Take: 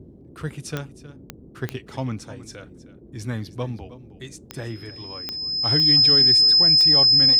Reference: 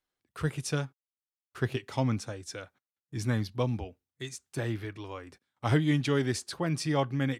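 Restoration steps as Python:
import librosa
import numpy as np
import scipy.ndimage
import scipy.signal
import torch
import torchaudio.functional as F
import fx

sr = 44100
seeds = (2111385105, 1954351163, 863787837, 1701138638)

y = fx.fix_declick_ar(x, sr, threshold=10.0)
y = fx.notch(y, sr, hz=5100.0, q=30.0)
y = fx.noise_reduce(y, sr, print_start_s=2.63, print_end_s=3.13, reduce_db=30.0)
y = fx.fix_echo_inverse(y, sr, delay_ms=314, level_db=-16.0)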